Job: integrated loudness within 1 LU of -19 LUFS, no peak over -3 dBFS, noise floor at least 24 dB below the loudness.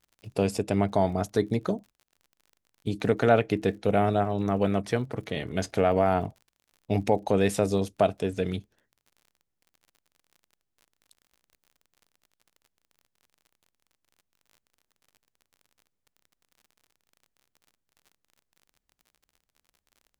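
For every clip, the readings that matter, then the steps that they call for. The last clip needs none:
tick rate 43 per s; loudness -27.0 LUFS; peak level -8.5 dBFS; loudness target -19.0 LUFS
-> de-click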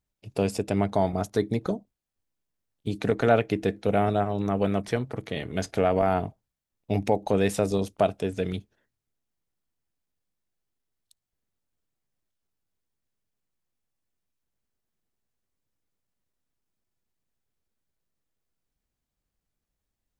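tick rate 0.050 per s; loudness -26.5 LUFS; peak level -8.5 dBFS; loudness target -19.0 LUFS
-> trim +7.5 dB; peak limiter -3 dBFS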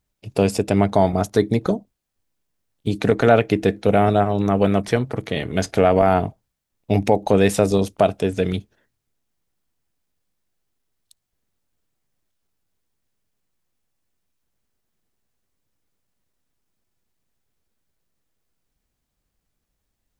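loudness -19.5 LUFS; peak level -3.0 dBFS; noise floor -78 dBFS

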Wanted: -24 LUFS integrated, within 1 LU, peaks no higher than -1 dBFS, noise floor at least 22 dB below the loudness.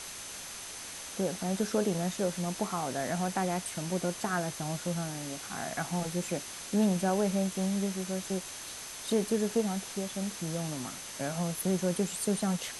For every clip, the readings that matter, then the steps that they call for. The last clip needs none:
steady tone 6.2 kHz; tone level -48 dBFS; noise floor -43 dBFS; noise floor target -55 dBFS; loudness -32.5 LUFS; peak level -16.0 dBFS; loudness target -24.0 LUFS
-> band-stop 6.2 kHz, Q 30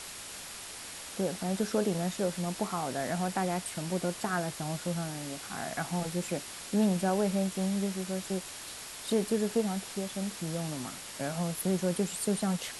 steady tone not found; noise floor -44 dBFS; noise floor target -55 dBFS
-> noise reduction 11 dB, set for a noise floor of -44 dBFS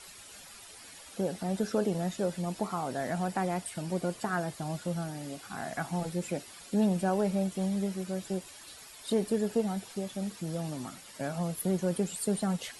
noise floor -50 dBFS; noise floor target -55 dBFS
-> noise reduction 6 dB, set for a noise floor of -50 dBFS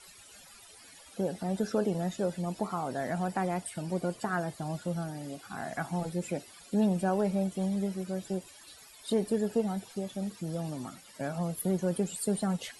noise floor -54 dBFS; noise floor target -55 dBFS
-> noise reduction 6 dB, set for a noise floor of -54 dBFS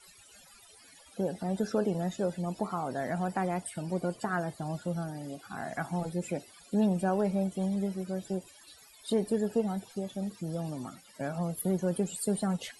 noise floor -57 dBFS; loudness -33.0 LUFS; peak level -16.5 dBFS; loudness target -24.0 LUFS
-> trim +9 dB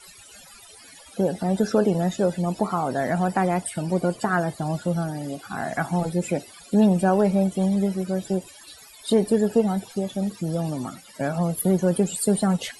loudness -24.0 LUFS; peak level -7.5 dBFS; noise floor -48 dBFS

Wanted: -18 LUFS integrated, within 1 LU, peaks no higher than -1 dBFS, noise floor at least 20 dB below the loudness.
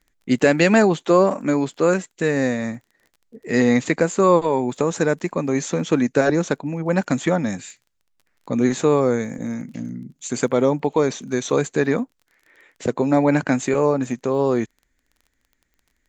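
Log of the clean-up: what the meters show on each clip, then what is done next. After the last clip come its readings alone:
tick rate 20 per s; loudness -20.5 LUFS; peak level -2.0 dBFS; loudness target -18.0 LUFS
-> de-click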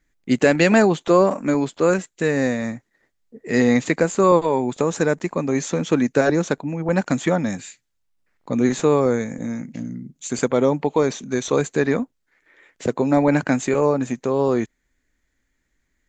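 tick rate 0 per s; loudness -20.5 LUFS; peak level -2.0 dBFS; loudness target -18.0 LUFS
-> trim +2.5 dB; peak limiter -1 dBFS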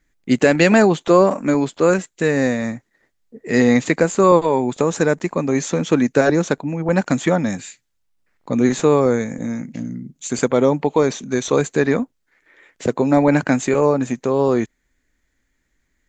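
loudness -18.0 LUFS; peak level -1.0 dBFS; noise floor -70 dBFS

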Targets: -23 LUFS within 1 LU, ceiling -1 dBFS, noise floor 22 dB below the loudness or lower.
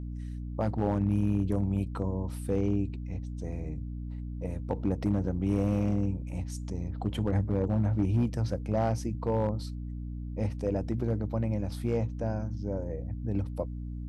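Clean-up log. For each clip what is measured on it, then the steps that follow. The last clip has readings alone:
clipped samples 0.9%; clipping level -19.5 dBFS; hum 60 Hz; highest harmonic 300 Hz; hum level -34 dBFS; loudness -31.5 LUFS; peak level -19.5 dBFS; loudness target -23.0 LUFS
-> clip repair -19.5 dBFS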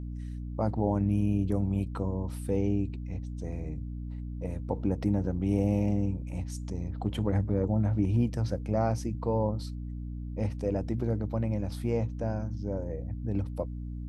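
clipped samples 0.0%; hum 60 Hz; highest harmonic 300 Hz; hum level -34 dBFS
-> de-hum 60 Hz, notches 5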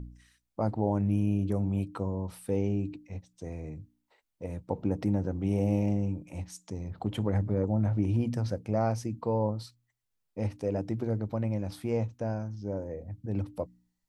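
hum not found; loudness -31.5 LUFS; peak level -15.0 dBFS; loudness target -23.0 LUFS
-> trim +8.5 dB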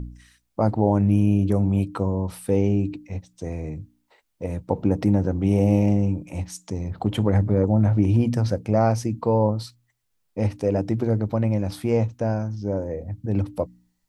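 loudness -23.0 LUFS; peak level -6.5 dBFS; noise floor -72 dBFS

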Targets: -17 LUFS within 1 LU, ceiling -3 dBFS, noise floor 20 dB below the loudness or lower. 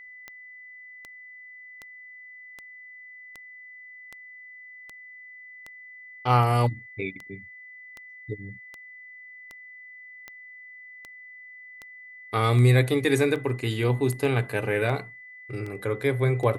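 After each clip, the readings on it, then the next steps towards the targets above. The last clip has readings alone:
clicks found 22; steady tone 2 kHz; tone level -43 dBFS; loudness -25.0 LUFS; peak level -7.0 dBFS; loudness target -17.0 LUFS
-> de-click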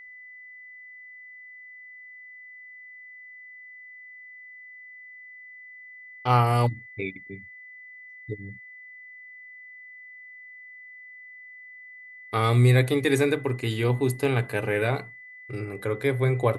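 clicks found 0; steady tone 2 kHz; tone level -43 dBFS
-> band-stop 2 kHz, Q 30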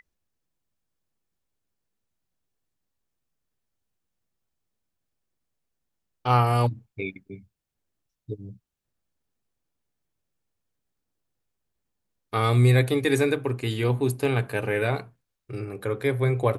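steady tone not found; loudness -24.5 LUFS; peak level -7.5 dBFS; loudness target -17.0 LUFS
-> trim +7.5 dB; peak limiter -3 dBFS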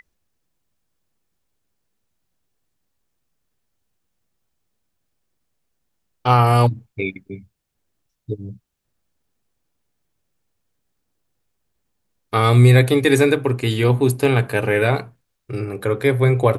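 loudness -17.5 LUFS; peak level -3.0 dBFS; noise floor -75 dBFS

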